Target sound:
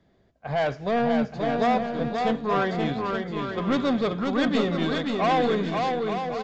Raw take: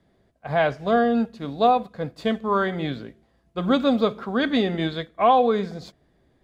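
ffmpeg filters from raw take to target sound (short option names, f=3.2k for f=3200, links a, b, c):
-af "aresample=16000,asoftclip=type=tanh:threshold=-19dB,aresample=44100,aecho=1:1:530|874.5|1098|1244|1339:0.631|0.398|0.251|0.158|0.1"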